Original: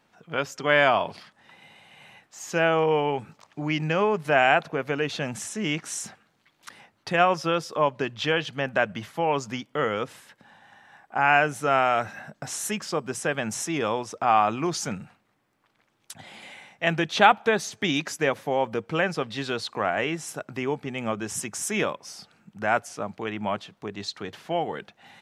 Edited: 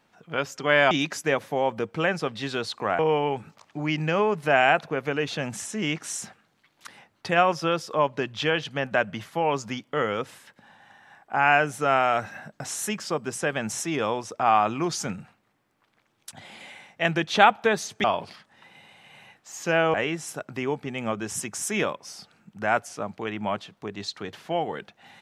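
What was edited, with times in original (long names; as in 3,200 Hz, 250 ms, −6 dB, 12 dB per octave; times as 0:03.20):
0:00.91–0:02.81: swap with 0:17.86–0:19.94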